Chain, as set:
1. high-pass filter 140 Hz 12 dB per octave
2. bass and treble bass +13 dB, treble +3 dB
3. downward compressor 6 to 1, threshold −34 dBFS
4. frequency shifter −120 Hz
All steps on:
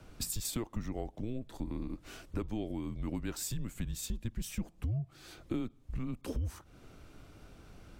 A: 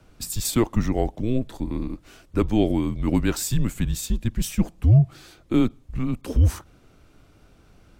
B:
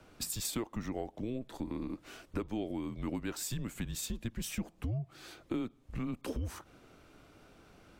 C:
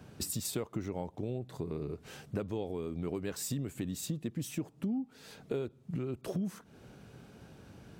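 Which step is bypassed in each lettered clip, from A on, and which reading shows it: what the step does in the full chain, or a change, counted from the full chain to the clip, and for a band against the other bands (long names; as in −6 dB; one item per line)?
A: 3, average gain reduction 11.5 dB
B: 2, 125 Hz band −4.0 dB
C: 4, 500 Hz band +6.5 dB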